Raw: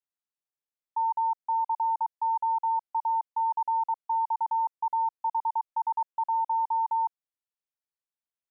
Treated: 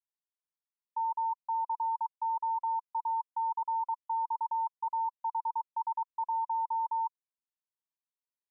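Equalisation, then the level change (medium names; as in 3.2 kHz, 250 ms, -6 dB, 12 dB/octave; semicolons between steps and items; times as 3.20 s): band-pass filter 990 Hz, Q 7.8; 0.0 dB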